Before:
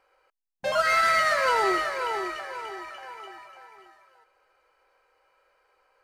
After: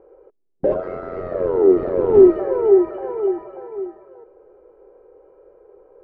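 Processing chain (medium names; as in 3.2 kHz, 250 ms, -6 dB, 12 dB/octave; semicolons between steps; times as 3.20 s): in parallel at +2.5 dB: compressor with a negative ratio -28 dBFS, ratio -0.5; 0.74–2.14 s: on the sum: AM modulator 89 Hz, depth 100%; sine folder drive 9 dB, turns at -8.5 dBFS; resonant low-pass 400 Hz, resonance Q 4.6; trim -4 dB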